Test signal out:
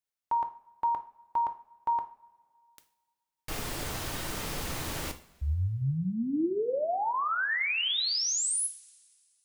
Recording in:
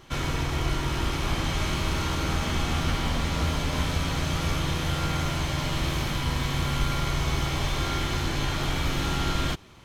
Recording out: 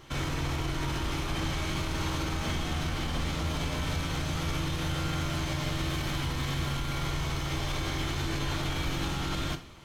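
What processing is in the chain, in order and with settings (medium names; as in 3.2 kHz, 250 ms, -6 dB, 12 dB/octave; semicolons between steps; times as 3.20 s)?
peak limiter -22.5 dBFS; two-slope reverb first 0.4 s, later 2.1 s, from -21 dB, DRR 7 dB; trim -1 dB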